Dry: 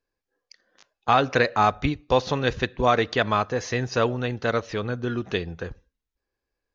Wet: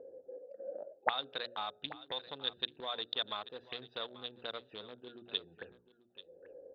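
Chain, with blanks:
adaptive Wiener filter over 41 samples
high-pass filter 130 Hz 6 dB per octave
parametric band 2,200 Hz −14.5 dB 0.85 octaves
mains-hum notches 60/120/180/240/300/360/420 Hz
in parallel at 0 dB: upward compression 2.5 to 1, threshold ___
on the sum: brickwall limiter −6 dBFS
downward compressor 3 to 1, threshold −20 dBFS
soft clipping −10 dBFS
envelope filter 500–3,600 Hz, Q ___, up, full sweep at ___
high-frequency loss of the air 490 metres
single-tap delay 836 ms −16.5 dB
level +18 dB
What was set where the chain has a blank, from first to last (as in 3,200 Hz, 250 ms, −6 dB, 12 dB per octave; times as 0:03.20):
−34 dBFS, 11, −25 dBFS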